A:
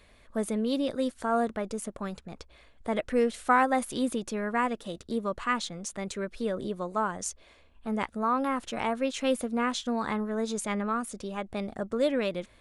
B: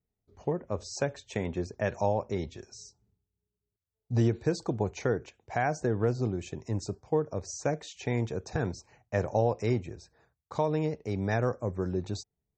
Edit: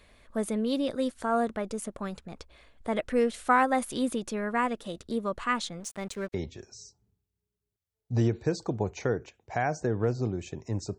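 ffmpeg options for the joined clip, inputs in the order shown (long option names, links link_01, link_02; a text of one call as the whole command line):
ffmpeg -i cue0.wav -i cue1.wav -filter_complex "[0:a]asettb=1/sr,asplit=3[link_01][link_02][link_03];[link_01]atrim=end=5.804[link_04];[link_02]atrim=start=5.8:end=6.34,asetpts=PTS-STARTPTS,afade=type=in:duration=0.004:curve=qsin,afade=type=out:start_time=0.536:duration=0.004:curve=qsin,aeval=exprs='sgn(val(0))*max(abs(val(0))-0.00376,0)':channel_layout=same[link_05];[link_03]atrim=start=6.336[link_06];[link_04][link_05]acrossfade=duration=0.004:curve1=hsin:curve2=qsin[link_07];[link_07][link_06]acrossfade=duration=0.004:curve1=qsin:curve2=hsin,apad=whole_dur=10.98,atrim=end=10.98,atrim=end=6.342[link_08];[1:a]atrim=start=2.338:end=6.98[link_09];[link_08][link_09]acrossfade=duration=0.004:curve1=hsin:curve2=hsin" out.wav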